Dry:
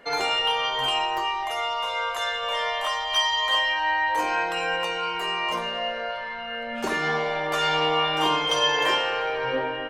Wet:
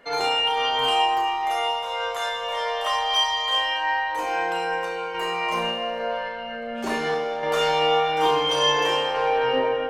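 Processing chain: random-step tremolo; 5.38–6.00 s: crackle 20 per s -> 93 per s -48 dBFS; on a send: flutter echo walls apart 5.9 m, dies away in 0.41 s; on the sum: plate-style reverb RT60 2.5 s, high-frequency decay 0.6×, DRR 8 dB

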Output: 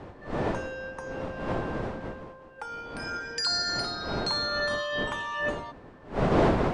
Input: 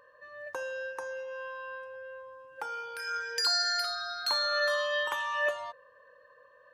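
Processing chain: wind noise 580 Hz -31 dBFS; elliptic low-pass 9.3 kHz, stop band 50 dB

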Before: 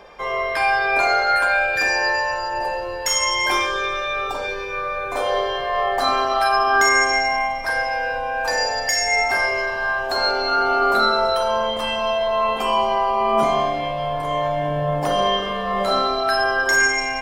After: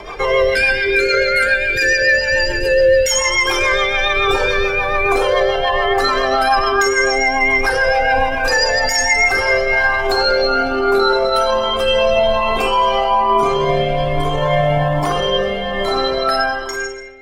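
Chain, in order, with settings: fade out at the end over 4.50 s; time-frequency box 0.32–3.10 s, 590–1400 Hz -25 dB; spring tank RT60 1.6 s, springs 53 ms, chirp 70 ms, DRR 4.5 dB; rotary cabinet horn 7 Hz, later 0.6 Hz, at 9.02 s; loudness maximiser +23 dB; Shepard-style flanger rising 1.2 Hz; trim -2 dB

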